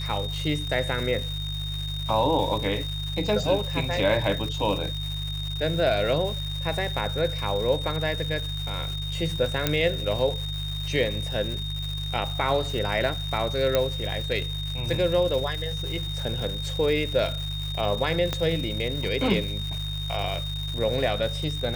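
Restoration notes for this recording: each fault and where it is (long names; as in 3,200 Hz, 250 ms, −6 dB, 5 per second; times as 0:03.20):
surface crackle 400 per second −32 dBFS
mains hum 50 Hz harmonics 3 −32 dBFS
whistle 3,700 Hz −33 dBFS
0:09.67: click −6 dBFS
0:13.75: click −8 dBFS
0:18.33: click −12 dBFS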